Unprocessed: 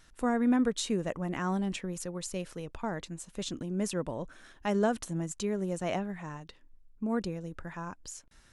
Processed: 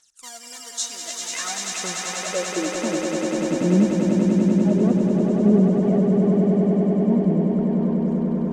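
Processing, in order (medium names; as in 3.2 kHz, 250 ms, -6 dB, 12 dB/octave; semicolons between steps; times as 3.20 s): in parallel at -5 dB: sample-and-hold 17×; on the sum: phaser 0.54 Hz, delay 3.6 ms, feedback 72%; band-pass sweep 7 kHz -> 250 Hz, 0.75–2.86 s; echo with a slow build-up 98 ms, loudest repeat 8, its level -4.5 dB; trim +8.5 dB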